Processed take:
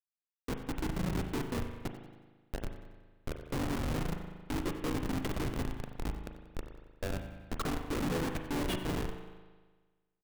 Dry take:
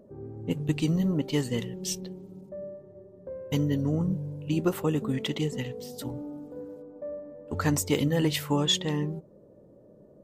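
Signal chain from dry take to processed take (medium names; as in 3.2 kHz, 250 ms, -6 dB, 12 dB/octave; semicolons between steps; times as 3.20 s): harmony voices -3 st -2 dB; Bessel high-pass 280 Hz, order 4; in parallel at +1.5 dB: compression 10:1, threshold -37 dBFS, peak gain reduction 18.5 dB; on the sum: low-pass that closes with the level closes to 2 kHz, closed at -24.5 dBFS; Schmitt trigger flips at -25.5 dBFS; on a send: feedback delay 92 ms, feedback 44%, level -15.5 dB; on the sum: spring tank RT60 1.4 s, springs 38 ms, chirp 70 ms, DRR 5.5 dB; trim -3 dB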